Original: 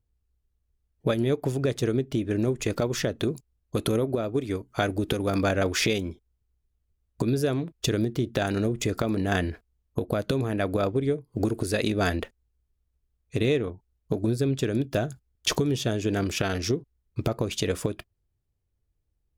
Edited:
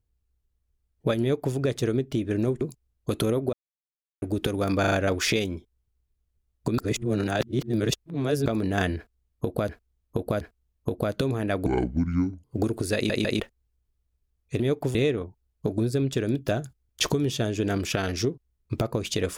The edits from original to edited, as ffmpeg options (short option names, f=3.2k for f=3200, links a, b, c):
-filter_complex "[0:a]asplit=18[a][b][c][d][e][f][g][h][i][j][k][l][m][n][o][p][q][r];[a]atrim=end=2.612[s];[b]atrim=start=3.268:end=4.19,asetpts=PTS-STARTPTS,afade=t=out:st=0.918:d=0.004:c=hsin[t];[c]atrim=start=4.19:end=4.88,asetpts=PTS-STARTPTS,volume=0[u];[d]atrim=start=4.88:end=5.502,asetpts=PTS-STARTPTS,afade=t=in:d=0.004:c=hsin[v];[e]atrim=start=5.458:end=5.502[w];[f]atrim=start=5.458:end=5.502[x];[g]atrim=start=5.458:end=7.322[y];[h]atrim=start=7.318:end=9.002,asetpts=PTS-STARTPTS,areverse[z];[i]atrim=start=8.998:end=10.232[aa];[j]atrim=start=9.508:end=10.232[ab];[k]atrim=start=9.508:end=10.764[ac];[l]atrim=start=10.76:end=11.25,asetpts=PTS-STARTPTS,asetrate=27783,aresample=44100[ad];[m]atrim=start=11.246:end=11.912[ae];[n]atrim=start=11.758:end=11.912[af];[o]atrim=start=11.758:end=11.912[ag];[p]atrim=start=12.208:end=13.412[ah];[q]atrim=start=1.208:end=1.562[ai];[r]atrim=start=13.408[aj];[t][u][v]concat=n=3:v=0:a=1[ak];[s][ak]acrossfade=d=0.004:c1=hsin:c2=hsin[al];[al][w]acrossfade=d=0.004:c1=hsin:c2=hsin[am];[am][x]acrossfade=d=0.004:c1=hsin:c2=hsin[an];[an][y]acrossfade=d=0.004:c1=hsin:c2=hsin[ao];[ao][z]acrossfade=d=0.004:c1=hsin:c2=hsin[ap];[ap][aa]acrossfade=d=0.004:c1=hsin:c2=hsin[aq];[aq][ab]acrossfade=d=0.004:c1=hsin:c2=hsin[ar];[ar][ac]acrossfade=d=0.004:c1=hsin:c2=hsin[as];[as][ad]acrossfade=d=0.004:c1=hsin:c2=hsin[at];[at][ae]acrossfade=d=0.004:c1=hsin:c2=hsin[au];[au][af]acrossfade=d=0.004:c1=hsin:c2=hsin[av];[av][ag]acrossfade=d=0.004:c1=hsin:c2=hsin[aw];[aw][ah]acrossfade=d=0.004:c1=hsin:c2=hsin[ax];[ax][ai]acrossfade=d=0.004:c1=hsin:c2=hsin[ay];[ay][aj]acrossfade=d=0.004:c1=hsin:c2=hsin"